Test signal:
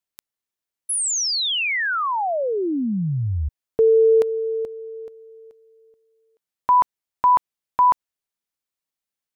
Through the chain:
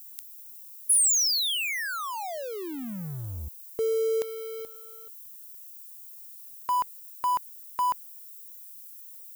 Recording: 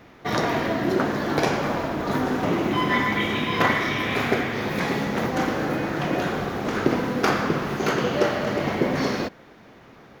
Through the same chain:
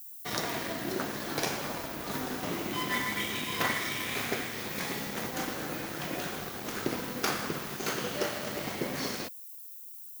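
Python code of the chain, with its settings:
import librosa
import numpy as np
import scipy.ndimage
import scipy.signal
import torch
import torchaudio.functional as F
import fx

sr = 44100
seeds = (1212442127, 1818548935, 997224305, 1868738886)

y = np.sign(x) * np.maximum(np.abs(x) - 10.0 ** (-36.0 / 20.0), 0.0)
y = fx.dmg_noise_colour(y, sr, seeds[0], colour='violet', level_db=-53.0)
y = F.preemphasis(torch.from_numpy(y), 0.8).numpy()
y = y * librosa.db_to_amplitude(3.0)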